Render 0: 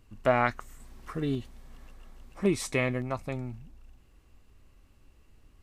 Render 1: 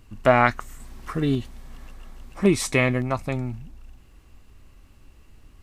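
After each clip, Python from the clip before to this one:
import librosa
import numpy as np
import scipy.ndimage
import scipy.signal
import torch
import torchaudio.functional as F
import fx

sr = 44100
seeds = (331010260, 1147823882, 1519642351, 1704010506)

y = fx.peak_eq(x, sr, hz=480.0, db=-2.5, octaves=0.77)
y = y * 10.0 ** (8.0 / 20.0)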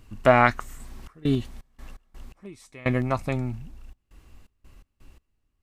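y = fx.step_gate(x, sr, bpm=84, pattern='xxxxxx.xx.x.x...', floor_db=-24.0, edge_ms=4.5)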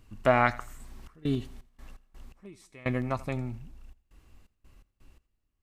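y = fx.echo_feedback(x, sr, ms=84, feedback_pct=36, wet_db=-20.0)
y = y * 10.0 ** (-5.5 / 20.0)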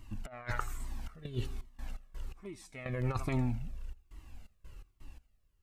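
y = fx.over_compress(x, sr, threshold_db=-32.0, ratio=-0.5)
y = fx.comb_cascade(y, sr, direction='falling', hz=1.2)
y = y * 10.0 ** (3.0 / 20.0)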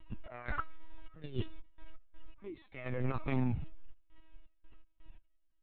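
y = fx.lpc_vocoder(x, sr, seeds[0], excitation='pitch_kept', order=16)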